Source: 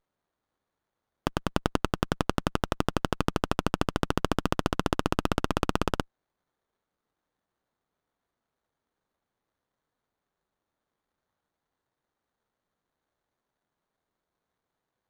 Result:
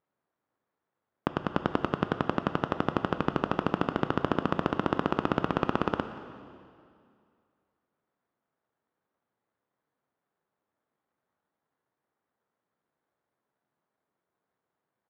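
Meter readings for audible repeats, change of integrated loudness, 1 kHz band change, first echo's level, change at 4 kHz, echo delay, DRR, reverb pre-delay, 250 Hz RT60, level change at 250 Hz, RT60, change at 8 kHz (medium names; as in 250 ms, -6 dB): 1, -0.5 dB, +0.5 dB, -20.5 dB, -6.0 dB, 178 ms, 8.5 dB, 8 ms, 2.3 s, 0.0 dB, 2.3 s, under -15 dB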